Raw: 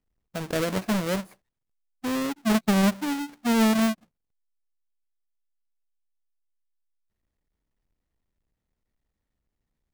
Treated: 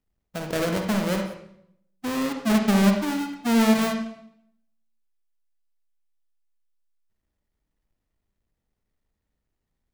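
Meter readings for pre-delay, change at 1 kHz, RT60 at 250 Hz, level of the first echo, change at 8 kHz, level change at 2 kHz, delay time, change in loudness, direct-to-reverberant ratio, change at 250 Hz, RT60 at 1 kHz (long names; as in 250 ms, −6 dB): 39 ms, +1.5 dB, 0.90 s, no echo audible, +0.5 dB, +1.5 dB, no echo audible, +2.0 dB, 3.5 dB, +2.0 dB, 0.65 s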